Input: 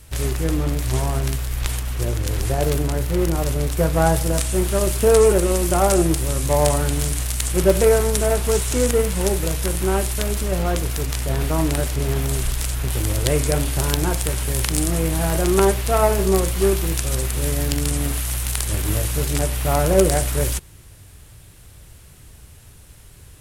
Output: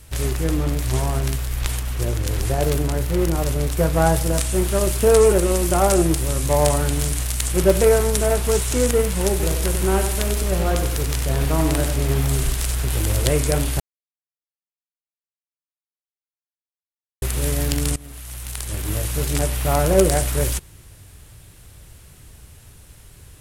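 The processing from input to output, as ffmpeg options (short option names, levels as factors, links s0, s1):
-filter_complex "[0:a]asettb=1/sr,asplit=3[s0][s1][s2];[s0]atrim=end=9.304[s3];[s1]atrim=start=9.3:end=13.3,asetpts=PTS-STARTPTS,afade=t=in:d=0.004:c=qsin,afade=t=out:st=3.996:d=0.004:c=qsin,aecho=1:1:95|190|285|380|475:0.447|0.188|0.0788|0.0331|0.0139,atrim=end_sample=176400[s4];[s2]atrim=start=13.296[s5];[s3][s4]acrossfade=d=0.004:c1=hsin:c2=qsin[s6];[s6][s5]acrossfade=d=0.004:c1=qsin:c2=hsin,asplit=4[s7][s8][s9][s10];[s7]atrim=end=13.8,asetpts=PTS-STARTPTS,afade=t=out:st=13.796:d=0.004:c=hsin[s11];[s8]atrim=start=13.8:end=17.22,asetpts=PTS-STARTPTS,volume=0[s12];[s9]atrim=start=17.22:end=17.96,asetpts=PTS-STARTPTS,afade=t=in:d=0.004:c=hsin,afade=t=out:st=0.736:d=0.004:c=hsin:silence=0.0841395[s13];[s10]atrim=start=17.96,asetpts=PTS-STARTPTS,afade=t=in:d=1.41:silence=0.0841395[s14];[s11][s12][s13][s14]concat=n=4:v=0:a=1"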